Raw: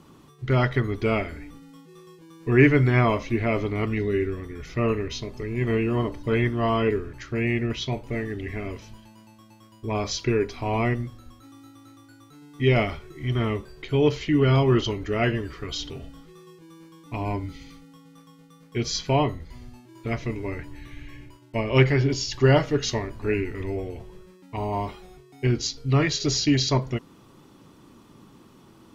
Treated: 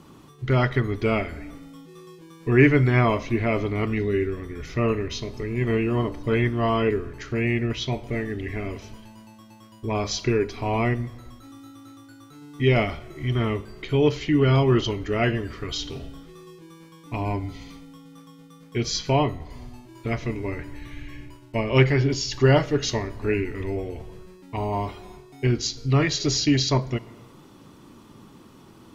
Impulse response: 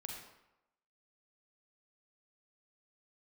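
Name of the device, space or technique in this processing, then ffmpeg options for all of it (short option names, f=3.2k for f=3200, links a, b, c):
compressed reverb return: -filter_complex "[0:a]asplit=2[a][b];[1:a]atrim=start_sample=2205[c];[b][c]afir=irnorm=-1:irlink=0,acompressor=threshold=-36dB:ratio=6,volume=-3.5dB[d];[a][d]amix=inputs=2:normalize=0"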